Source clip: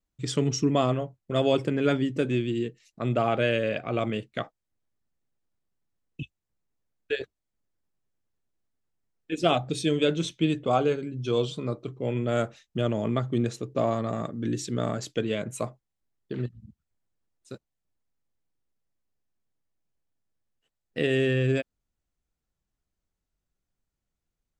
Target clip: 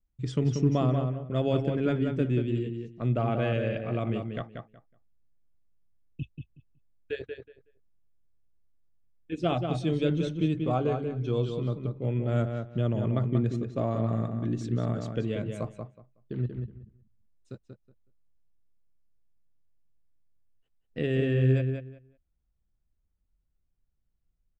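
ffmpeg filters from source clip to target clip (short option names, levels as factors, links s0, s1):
-filter_complex "[0:a]aemphasis=mode=reproduction:type=bsi,asplit=2[s0][s1];[s1]adelay=185,lowpass=f=3600:p=1,volume=0.531,asplit=2[s2][s3];[s3]adelay=185,lowpass=f=3600:p=1,volume=0.19,asplit=2[s4][s5];[s5]adelay=185,lowpass=f=3600:p=1,volume=0.19[s6];[s2][s4][s6]amix=inputs=3:normalize=0[s7];[s0][s7]amix=inputs=2:normalize=0,volume=0.473"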